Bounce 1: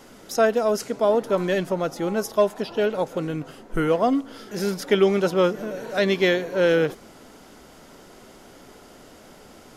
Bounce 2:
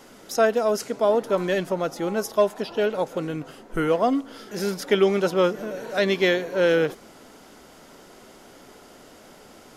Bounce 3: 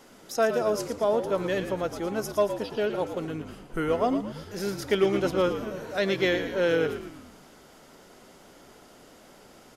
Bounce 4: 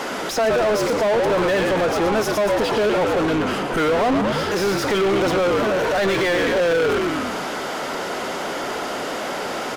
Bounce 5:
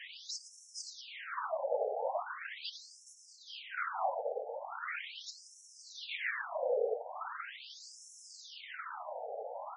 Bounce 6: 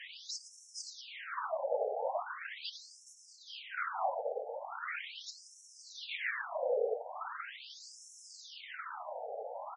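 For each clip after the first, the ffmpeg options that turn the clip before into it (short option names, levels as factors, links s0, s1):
-af "lowshelf=f=160:g=-5.5"
-filter_complex "[0:a]asplit=6[s0][s1][s2][s3][s4][s5];[s1]adelay=113,afreqshift=-60,volume=0.335[s6];[s2]adelay=226,afreqshift=-120,volume=0.16[s7];[s3]adelay=339,afreqshift=-180,volume=0.0767[s8];[s4]adelay=452,afreqshift=-240,volume=0.0372[s9];[s5]adelay=565,afreqshift=-300,volume=0.0178[s10];[s0][s6][s7][s8][s9][s10]amix=inputs=6:normalize=0,volume=0.596"
-filter_complex "[0:a]alimiter=limit=0.0841:level=0:latency=1:release=20,asplit=2[s0][s1];[s1]highpass=f=720:p=1,volume=35.5,asoftclip=type=tanh:threshold=0.0841[s2];[s0][s2]amix=inputs=2:normalize=0,lowpass=f=2100:p=1,volume=0.501,volume=2.66"
-af "afftfilt=real='hypot(re,im)*cos(2*PI*random(0))':imag='hypot(re,im)*sin(2*PI*random(1))':win_size=512:overlap=0.75,afftfilt=real='re*between(b*sr/1024,590*pow(7600/590,0.5+0.5*sin(2*PI*0.4*pts/sr))/1.41,590*pow(7600/590,0.5+0.5*sin(2*PI*0.4*pts/sr))*1.41)':imag='im*between(b*sr/1024,590*pow(7600/590,0.5+0.5*sin(2*PI*0.4*pts/sr))/1.41,590*pow(7600/590,0.5+0.5*sin(2*PI*0.4*pts/sr))*1.41)':win_size=1024:overlap=0.75,volume=0.531"
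-af "aresample=22050,aresample=44100"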